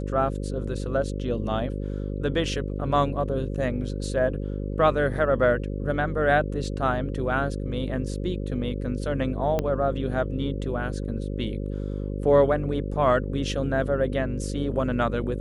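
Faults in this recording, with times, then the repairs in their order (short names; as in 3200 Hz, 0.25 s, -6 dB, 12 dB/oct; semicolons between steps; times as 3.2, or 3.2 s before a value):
buzz 50 Hz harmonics 11 -30 dBFS
9.59 pop -12 dBFS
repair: de-click; de-hum 50 Hz, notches 11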